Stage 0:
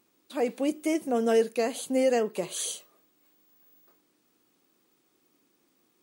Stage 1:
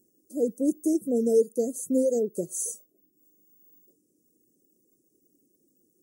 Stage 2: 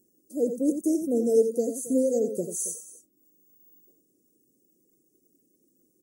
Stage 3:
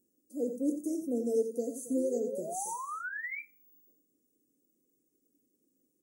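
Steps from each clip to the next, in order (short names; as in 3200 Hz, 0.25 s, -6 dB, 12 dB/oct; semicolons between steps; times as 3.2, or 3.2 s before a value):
reverb removal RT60 0.58 s; inverse Chebyshev band-stop 860–3900 Hz, stop band 40 dB; gain +4 dB
tapped delay 89/274 ms -8.5/-17 dB
painted sound rise, 1.96–3.41, 320–2400 Hz -31 dBFS; on a send at -5 dB: reverb RT60 0.25 s, pre-delay 3 ms; on the sum: gain -9 dB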